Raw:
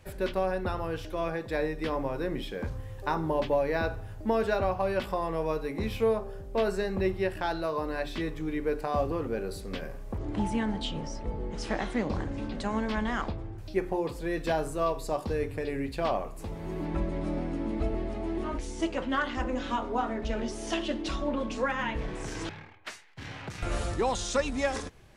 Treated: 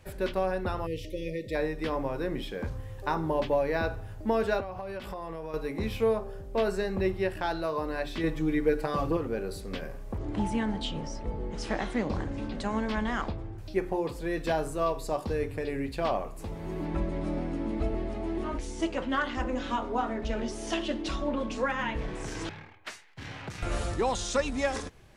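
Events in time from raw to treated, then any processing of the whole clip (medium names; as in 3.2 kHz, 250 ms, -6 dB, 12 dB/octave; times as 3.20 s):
0.87–1.55 s: spectral selection erased 640–1800 Hz
4.60–5.54 s: compression 10:1, threshold -33 dBFS
8.23–9.17 s: comb 6.2 ms, depth 96%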